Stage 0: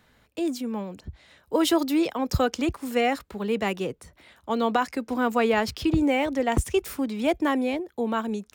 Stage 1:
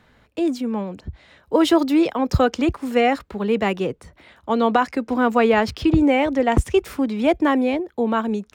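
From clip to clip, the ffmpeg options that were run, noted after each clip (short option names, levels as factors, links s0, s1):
-af "lowpass=f=3000:p=1,volume=2"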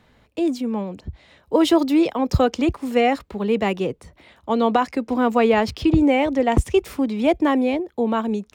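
-af "equalizer=f=1500:t=o:w=0.61:g=-5"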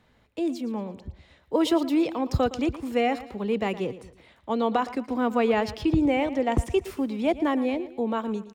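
-af "aecho=1:1:114|228|342:0.168|0.0655|0.0255,volume=0.501"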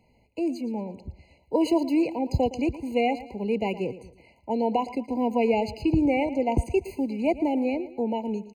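-af "afftfilt=real='re*eq(mod(floor(b*sr/1024/1000),2),0)':imag='im*eq(mod(floor(b*sr/1024/1000),2),0)':win_size=1024:overlap=0.75"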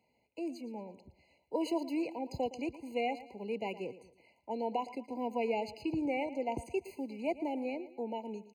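-af "highpass=f=360:p=1,volume=0.398"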